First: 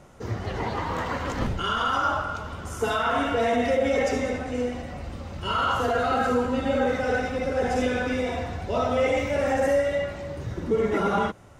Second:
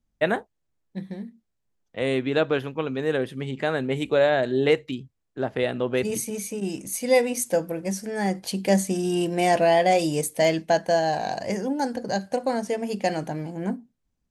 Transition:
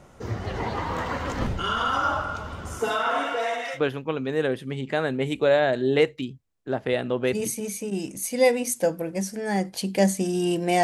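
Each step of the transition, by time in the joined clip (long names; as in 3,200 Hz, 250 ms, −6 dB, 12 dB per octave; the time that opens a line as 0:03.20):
first
0:02.78–0:03.81: high-pass filter 160 Hz → 1,300 Hz
0:03.77: continue with second from 0:02.47, crossfade 0.08 s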